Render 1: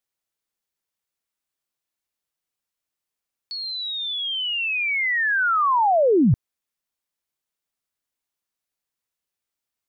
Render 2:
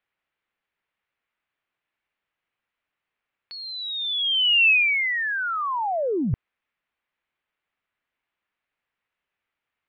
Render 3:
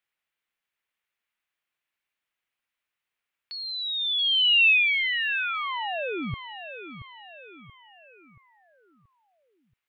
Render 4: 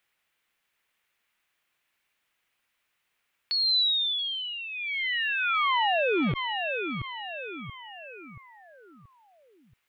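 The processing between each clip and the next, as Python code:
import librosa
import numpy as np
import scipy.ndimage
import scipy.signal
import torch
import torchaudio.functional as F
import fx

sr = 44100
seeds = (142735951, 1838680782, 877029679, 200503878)

y1 = scipy.signal.sosfilt(scipy.signal.butter(4, 2500.0, 'lowpass', fs=sr, output='sos'), x)
y1 = fx.tilt_shelf(y1, sr, db=-5.5, hz=1300.0)
y1 = fx.over_compress(y1, sr, threshold_db=-25.0, ratio=-0.5)
y1 = F.gain(torch.from_numpy(y1), 4.5).numpy()
y2 = fx.high_shelf(y1, sr, hz=2200.0, db=11.5)
y2 = fx.echo_feedback(y2, sr, ms=679, feedback_pct=46, wet_db=-11.5)
y2 = F.gain(torch.from_numpy(y2), -8.0).numpy()
y3 = fx.over_compress(y2, sr, threshold_db=-32.0, ratio=-1.0)
y3 = fx.transformer_sat(y3, sr, knee_hz=310.0)
y3 = F.gain(torch.from_numpy(y3), 4.0).numpy()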